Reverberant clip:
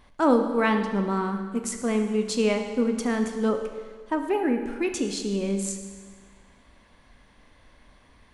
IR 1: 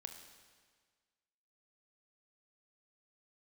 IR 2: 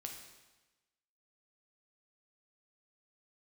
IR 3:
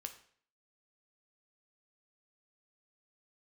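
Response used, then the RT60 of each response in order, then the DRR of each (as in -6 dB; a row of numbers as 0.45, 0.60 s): 1; 1.6, 1.1, 0.55 s; 5.5, 2.0, 6.0 dB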